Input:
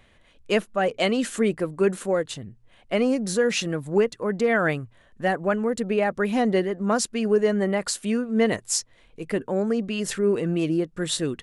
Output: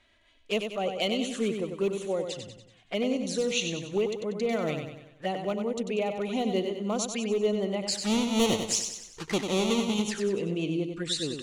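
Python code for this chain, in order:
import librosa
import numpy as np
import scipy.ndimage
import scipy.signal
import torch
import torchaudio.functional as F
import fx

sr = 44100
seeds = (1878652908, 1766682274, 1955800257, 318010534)

y = fx.halfwave_hold(x, sr, at=(7.9, 10.01), fade=0.02)
y = scipy.signal.sosfilt(scipy.signal.butter(2, 5800.0, 'lowpass', fs=sr, output='sos'), y)
y = fx.low_shelf(y, sr, hz=79.0, db=-6.5)
y = np.clip(y, -10.0 ** (-14.5 / 20.0), 10.0 ** (-14.5 / 20.0))
y = fx.env_flanger(y, sr, rest_ms=3.2, full_db=-22.5)
y = fx.high_shelf(y, sr, hz=2300.0, db=9.5)
y = fx.echo_feedback(y, sr, ms=95, feedback_pct=48, wet_db=-6.5)
y = F.gain(torch.from_numpy(y), -6.0).numpy()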